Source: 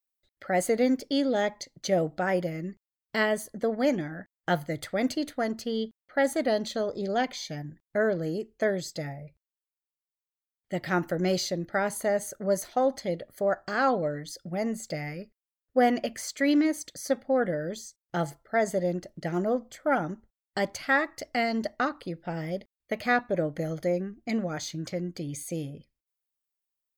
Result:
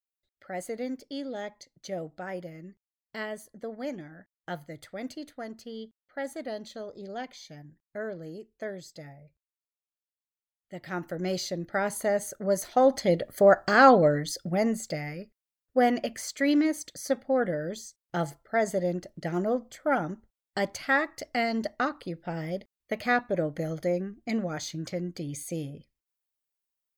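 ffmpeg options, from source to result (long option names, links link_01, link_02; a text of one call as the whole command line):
ffmpeg -i in.wav -af "volume=8dB,afade=type=in:start_time=10.74:duration=1.22:silence=0.316228,afade=type=in:start_time=12.56:duration=0.71:silence=0.398107,afade=type=out:start_time=14.06:duration=0.97:silence=0.375837" out.wav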